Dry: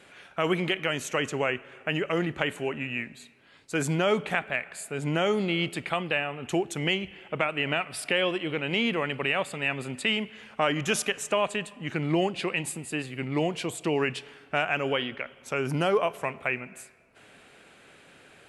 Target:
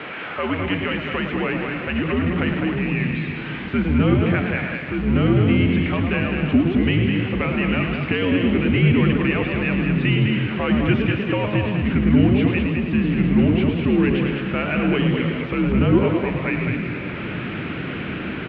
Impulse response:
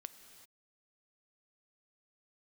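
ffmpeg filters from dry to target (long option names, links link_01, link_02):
-filter_complex "[0:a]aeval=exprs='val(0)+0.5*0.0531*sgn(val(0))':channel_layout=same,asplit=2[link_01][link_02];[link_02]aecho=0:1:207:0.531[link_03];[link_01][link_03]amix=inputs=2:normalize=0,asubboost=boost=8.5:cutoff=240,asplit=2[link_04][link_05];[link_05]asplit=4[link_06][link_07][link_08][link_09];[link_06]adelay=109,afreqshift=88,volume=-8dB[link_10];[link_07]adelay=218,afreqshift=176,volume=-17.1dB[link_11];[link_08]adelay=327,afreqshift=264,volume=-26.2dB[link_12];[link_09]adelay=436,afreqshift=352,volume=-35.4dB[link_13];[link_10][link_11][link_12][link_13]amix=inputs=4:normalize=0[link_14];[link_04][link_14]amix=inputs=2:normalize=0,highpass=frequency=220:width_type=q:width=0.5412,highpass=frequency=220:width_type=q:width=1.307,lowpass=frequency=3000:width_type=q:width=0.5176,lowpass=frequency=3000:width_type=q:width=0.7071,lowpass=frequency=3000:width_type=q:width=1.932,afreqshift=-84"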